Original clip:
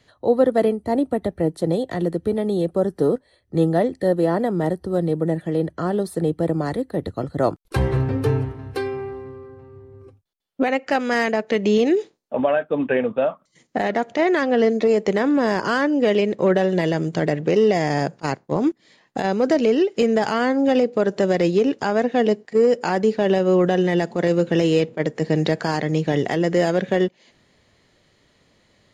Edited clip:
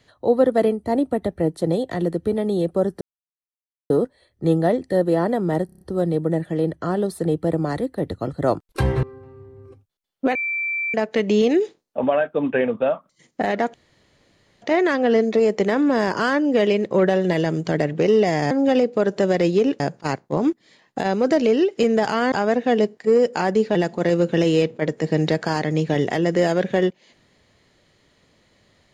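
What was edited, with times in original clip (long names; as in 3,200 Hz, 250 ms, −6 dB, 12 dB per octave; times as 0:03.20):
0:03.01: splice in silence 0.89 s
0:04.77: stutter 0.03 s, 6 plays
0:07.99–0:09.39: remove
0:10.71–0:11.30: beep over 2,340 Hz −21.5 dBFS
0:14.10: splice in room tone 0.88 s
0:20.51–0:21.80: move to 0:17.99
0:23.23–0:23.93: remove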